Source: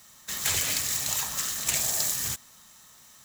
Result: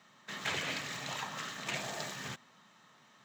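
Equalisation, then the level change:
high-pass filter 140 Hz 24 dB per octave
high-frequency loss of the air 210 metres
parametric band 5,100 Hz −5 dB 0.75 octaves
0.0 dB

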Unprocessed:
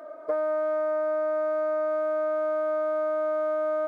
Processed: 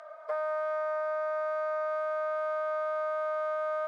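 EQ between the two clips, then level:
high-pass filter 670 Hz 24 dB per octave
high-frequency loss of the air 79 metres
high-shelf EQ 2,000 Hz +10 dB
−2.0 dB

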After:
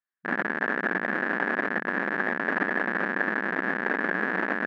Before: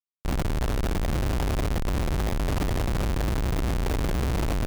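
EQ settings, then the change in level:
linear-phase brick-wall high-pass 180 Hz
low-pass with resonance 1,700 Hz, resonance Q 11
0.0 dB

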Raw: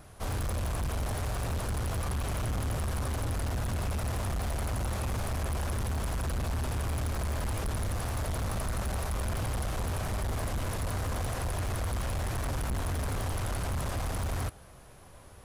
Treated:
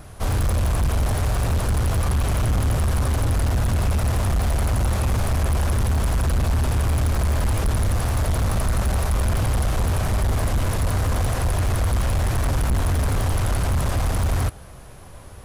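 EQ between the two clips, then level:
low-shelf EQ 160 Hz +4.5 dB
+8.0 dB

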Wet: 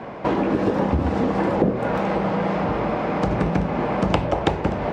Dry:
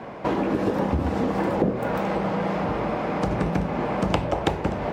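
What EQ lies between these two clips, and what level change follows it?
high-frequency loss of the air 51 metres
+3.0 dB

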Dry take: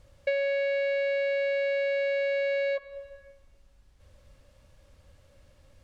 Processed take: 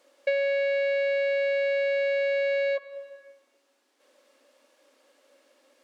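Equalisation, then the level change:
linear-phase brick-wall high-pass 240 Hz
+2.0 dB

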